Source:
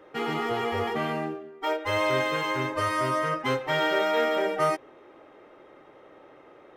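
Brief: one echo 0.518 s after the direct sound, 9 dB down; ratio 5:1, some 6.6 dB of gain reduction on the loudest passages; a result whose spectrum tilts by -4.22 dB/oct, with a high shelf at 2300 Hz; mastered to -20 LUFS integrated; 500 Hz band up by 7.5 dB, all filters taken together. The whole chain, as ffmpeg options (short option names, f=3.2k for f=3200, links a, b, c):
-af "equalizer=f=500:t=o:g=9,highshelf=f=2.3k:g=7,acompressor=threshold=-22dB:ratio=5,aecho=1:1:518:0.355,volume=6dB"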